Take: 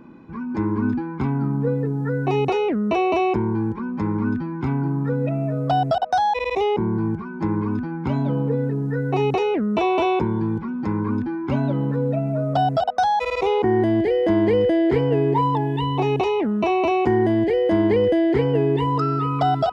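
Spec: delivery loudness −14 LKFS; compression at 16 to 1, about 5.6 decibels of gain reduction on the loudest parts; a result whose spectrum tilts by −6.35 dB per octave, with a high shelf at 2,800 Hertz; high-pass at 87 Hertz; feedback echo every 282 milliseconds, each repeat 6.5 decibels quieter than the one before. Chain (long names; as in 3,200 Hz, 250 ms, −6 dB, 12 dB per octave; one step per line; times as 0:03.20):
high-pass filter 87 Hz
high-shelf EQ 2,800 Hz −5.5 dB
downward compressor 16 to 1, threshold −20 dBFS
repeating echo 282 ms, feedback 47%, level −6.5 dB
level +9.5 dB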